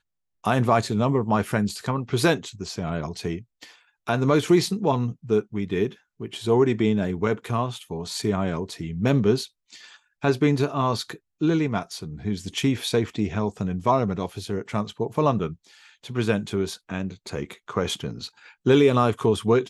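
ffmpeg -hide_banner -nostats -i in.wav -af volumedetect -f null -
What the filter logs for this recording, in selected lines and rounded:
mean_volume: -24.4 dB
max_volume: -6.0 dB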